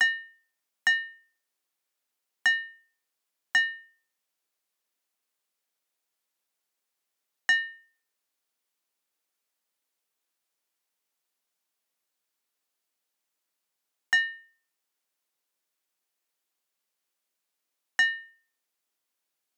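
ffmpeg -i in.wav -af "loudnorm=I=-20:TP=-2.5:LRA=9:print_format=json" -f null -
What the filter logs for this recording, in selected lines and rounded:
"input_i" : "-26.7",
"input_tp" : "-15.1",
"input_lra" : "3.0",
"input_thresh" : "-38.6",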